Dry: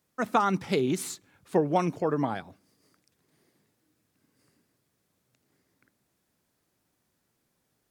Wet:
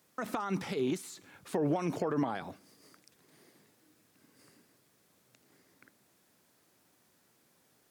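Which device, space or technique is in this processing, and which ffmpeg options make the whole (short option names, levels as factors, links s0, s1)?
de-esser from a sidechain: -filter_complex "[0:a]asplit=2[s0][s1];[s1]highpass=f=5100:p=1,apad=whole_len=348459[s2];[s0][s2]sidechaincompress=threshold=0.00178:ratio=8:attack=4.7:release=33,highpass=f=210:p=1,volume=2.37"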